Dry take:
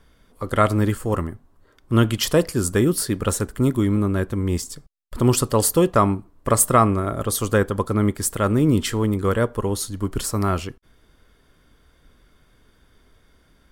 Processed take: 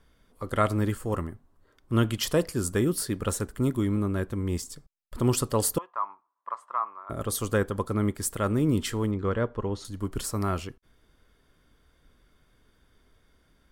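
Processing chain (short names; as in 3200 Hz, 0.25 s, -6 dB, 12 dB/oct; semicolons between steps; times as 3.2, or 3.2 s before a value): 5.78–7.1 ladder band-pass 1100 Hz, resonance 70%; 9.11–9.85 air absorption 150 m; gain -6.5 dB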